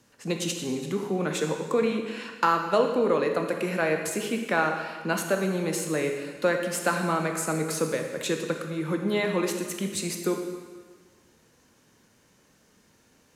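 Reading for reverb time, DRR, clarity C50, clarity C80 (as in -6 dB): 1.5 s, 3.5 dB, 5.5 dB, 7.0 dB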